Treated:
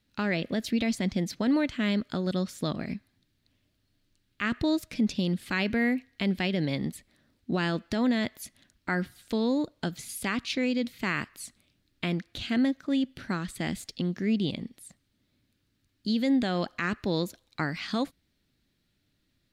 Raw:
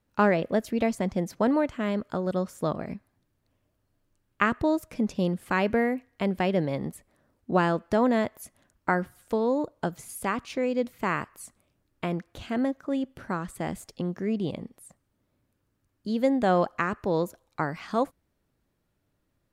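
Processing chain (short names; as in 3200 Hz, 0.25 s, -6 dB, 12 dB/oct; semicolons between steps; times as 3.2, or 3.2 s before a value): graphic EQ 250/500/1000/2000/4000 Hz +4/-5/-7/+4/+12 dB; limiter -17.5 dBFS, peak gain reduction 11.5 dB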